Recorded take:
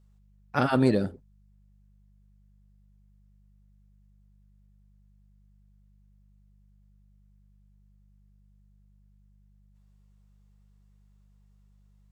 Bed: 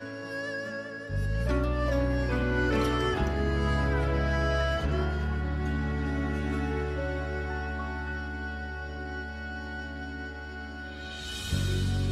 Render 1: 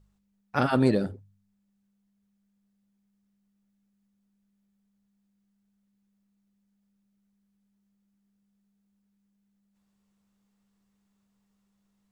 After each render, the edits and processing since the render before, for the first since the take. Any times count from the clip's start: de-hum 50 Hz, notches 3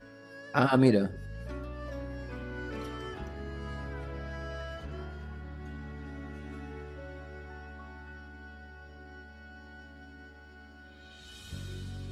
add bed -12.5 dB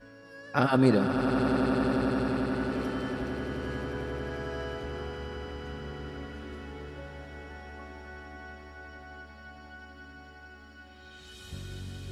echo with a slow build-up 89 ms, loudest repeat 8, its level -11 dB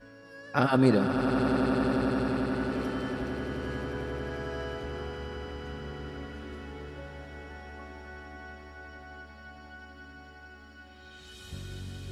no audible change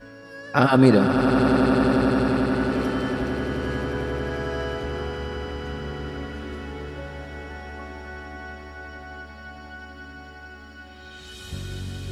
trim +7.5 dB; peak limiter -3 dBFS, peak gain reduction 1.5 dB

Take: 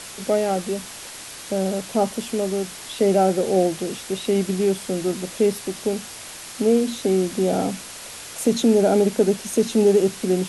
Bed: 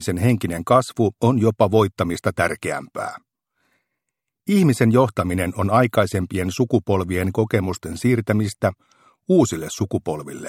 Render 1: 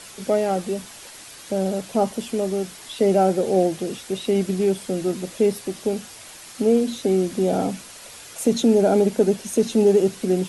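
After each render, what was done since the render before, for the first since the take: noise reduction 6 dB, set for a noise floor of -38 dBFS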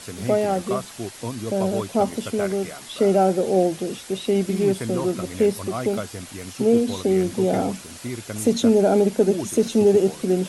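add bed -13.5 dB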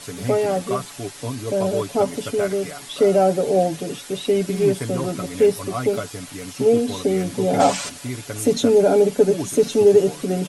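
7.60–7.89 s: time-frequency box 480–8800 Hz +12 dB; comb 7 ms, depth 72%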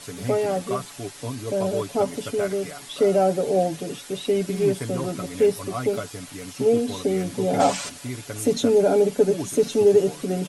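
trim -3 dB

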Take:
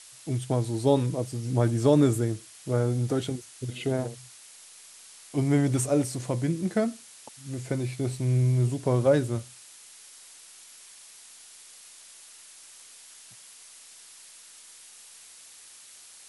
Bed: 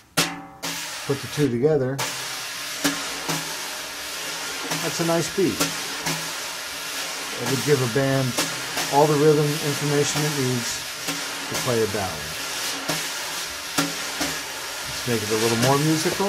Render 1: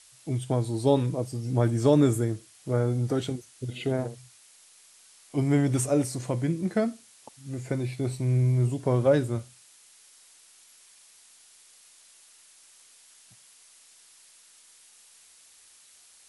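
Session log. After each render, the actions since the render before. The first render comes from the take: noise print and reduce 6 dB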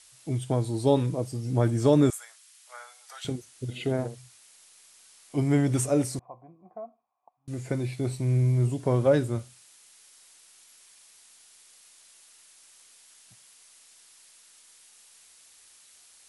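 2.10–3.25 s: Bessel high-pass 1.4 kHz, order 8; 6.19–7.48 s: cascade formant filter a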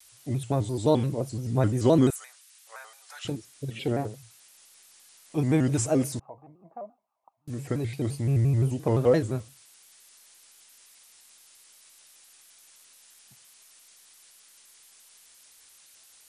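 vibrato with a chosen wave square 5.8 Hz, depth 160 cents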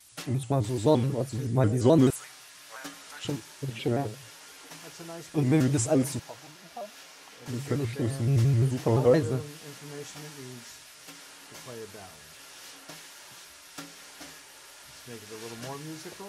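add bed -20 dB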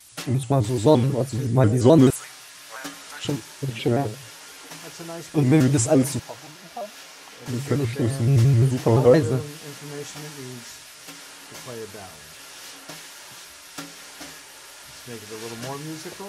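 trim +6 dB

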